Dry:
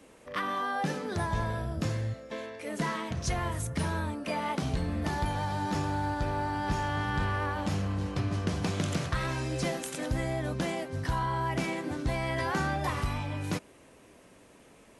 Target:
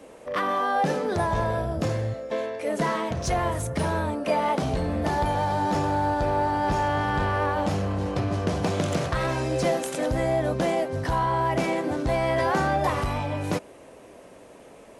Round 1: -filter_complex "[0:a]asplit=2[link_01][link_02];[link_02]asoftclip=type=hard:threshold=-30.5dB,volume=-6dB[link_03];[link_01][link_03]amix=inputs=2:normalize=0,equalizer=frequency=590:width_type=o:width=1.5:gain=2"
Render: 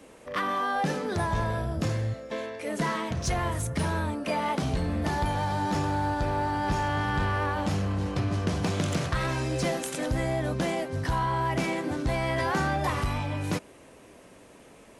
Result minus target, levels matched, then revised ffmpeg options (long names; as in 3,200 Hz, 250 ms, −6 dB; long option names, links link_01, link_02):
500 Hz band −3.0 dB
-filter_complex "[0:a]asplit=2[link_01][link_02];[link_02]asoftclip=type=hard:threshold=-30.5dB,volume=-6dB[link_03];[link_01][link_03]amix=inputs=2:normalize=0,equalizer=frequency=590:width_type=o:width=1.5:gain=9"